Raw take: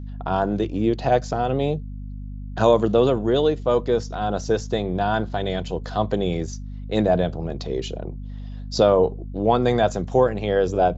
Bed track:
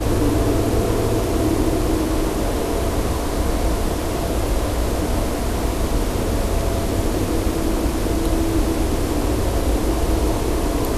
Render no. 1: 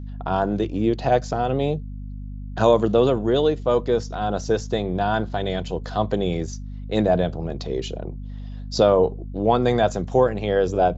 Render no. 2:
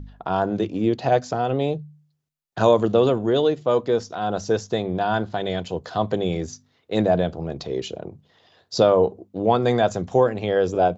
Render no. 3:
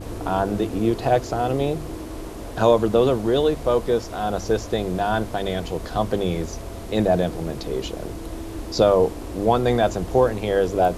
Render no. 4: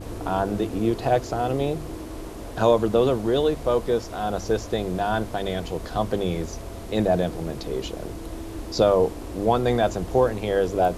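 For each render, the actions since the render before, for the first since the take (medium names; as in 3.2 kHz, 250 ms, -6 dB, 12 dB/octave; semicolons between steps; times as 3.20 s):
no audible change
de-hum 50 Hz, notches 5
add bed track -13.5 dB
trim -2 dB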